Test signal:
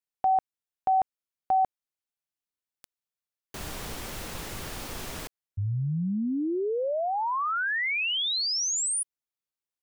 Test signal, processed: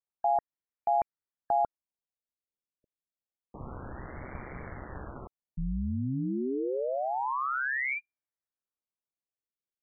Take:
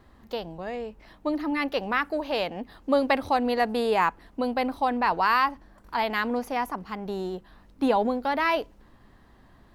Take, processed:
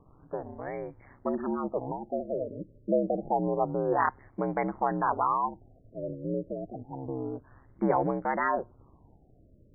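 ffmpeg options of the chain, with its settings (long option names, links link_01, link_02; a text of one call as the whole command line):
ffmpeg -i in.wav -af "aeval=exprs='val(0)*sin(2*PI*66*n/s)':channel_layout=same,afftfilt=real='re*lt(b*sr/1024,610*pow(2400/610,0.5+0.5*sin(2*PI*0.28*pts/sr)))':imag='im*lt(b*sr/1024,610*pow(2400/610,0.5+0.5*sin(2*PI*0.28*pts/sr)))':win_size=1024:overlap=0.75" out.wav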